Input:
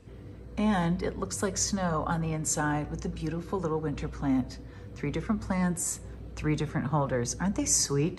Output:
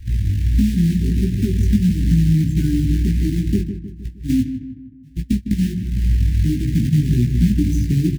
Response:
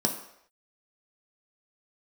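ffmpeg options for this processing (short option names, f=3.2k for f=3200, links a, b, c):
-filter_complex "[0:a]aemphasis=mode=reproduction:type=riaa,bandreject=f=144.1:t=h:w=4,bandreject=f=288.2:t=h:w=4,bandreject=f=432.3:t=h:w=4,bandreject=f=576.4:t=h:w=4,bandreject=f=720.5:t=h:w=4,bandreject=f=864.6:t=h:w=4,bandreject=f=1.0087k:t=h:w=4,bandreject=f=1.1528k:t=h:w=4,bandreject=f=1.2969k:t=h:w=4,bandreject=f=1.441k:t=h:w=4,bandreject=f=1.5851k:t=h:w=4,bandreject=f=1.7292k:t=h:w=4,bandreject=f=1.8733k:t=h:w=4,bandreject=f=2.0174k:t=h:w=4,bandreject=f=2.1615k:t=h:w=4,bandreject=f=2.3056k:t=h:w=4,bandreject=f=2.4497k:t=h:w=4,bandreject=f=2.5938k:t=h:w=4,bandreject=f=2.7379k:t=h:w=4,bandreject=f=2.882k:t=h:w=4,bandreject=f=3.0261k:t=h:w=4,bandreject=f=3.1702k:t=h:w=4,bandreject=f=3.3143k:t=h:w=4,bandreject=f=3.4584k:t=h:w=4,bandreject=f=3.6025k:t=h:w=4,bandreject=f=3.7466k:t=h:w=4,bandreject=f=3.8907k:t=h:w=4,bandreject=f=4.0348k:t=h:w=4,bandreject=f=4.1789k:t=h:w=4,bandreject=f=4.323k:t=h:w=4,bandreject=f=4.4671k:t=h:w=4,bandreject=f=4.6112k:t=h:w=4,bandreject=f=4.7553k:t=h:w=4,bandreject=f=4.8994k:t=h:w=4,bandreject=f=5.0435k:t=h:w=4,bandreject=f=5.1876k:t=h:w=4,bandreject=f=5.3317k:t=h:w=4,bandreject=f=5.4758k:t=h:w=4,bandreject=f=5.6199k:t=h:w=4,asplit=3[a][b][c];[a]afade=t=out:st=3.6:d=0.02[d];[b]agate=range=-24dB:threshold=-18dB:ratio=16:detection=peak,afade=t=in:st=3.6:d=0.02,afade=t=out:st=5.75:d=0.02[e];[c]afade=t=in:st=5.75:d=0.02[f];[d][e][f]amix=inputs=3:normalize=0,afftdn=nr=33:nf=-29,lowshelf=f=400:t=q:w=1.5:g=9,acompressor=threshold=-17dB:ratio=8,acrusher=bits=5:mode=log:mix=0:aa=0.000001,flanger=delay=15.5:depth=4.7:speed=1.5,asuperstop=centerf=800:order=20:qfactor=0.66,asplit=2[g][h];[h]adelay=155,lowpass=f=1.9k:p=1,volume=-9dB,asplit=2[i][j];[j]adelay=155,lowpass=f=1.9k:p=1,volume=0.5,asplit=2[k][l];[l]adelay=155,lowpass=f=1.9k:p=1,volume=0.5,asplit=2[m][n];[n]adelay=155,lowpass=f=1.9k:p=1,volume=0.5,asplit=2[o][p];[p]adelay=155,lowpass=f=1.9k:p=1,volume=0.5,asplit=2[q][r];[r]adelay=155,lowpass=f=1.9k:p=1,volume=0.5[s];[g][i][k][m][o][q][s]amix=inputs=7:normalize=0,volume=6dB"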